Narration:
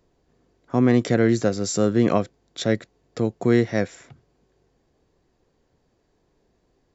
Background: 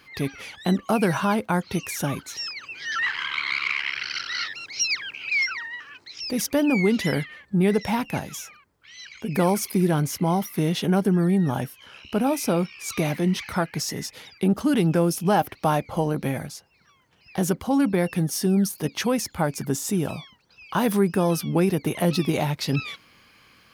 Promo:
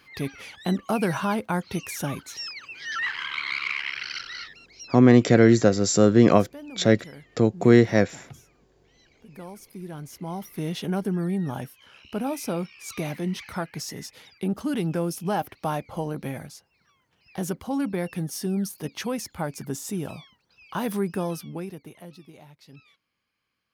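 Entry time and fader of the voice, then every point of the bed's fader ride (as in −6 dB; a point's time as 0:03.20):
4.20 s, +3.0 dB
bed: 0:04.13 −3 dB
0:04.88 −20 dB
0:09.62 −20 dB
0:10.70 −6 dB
0:21.21 −6 dB
0:22.22 −25 dB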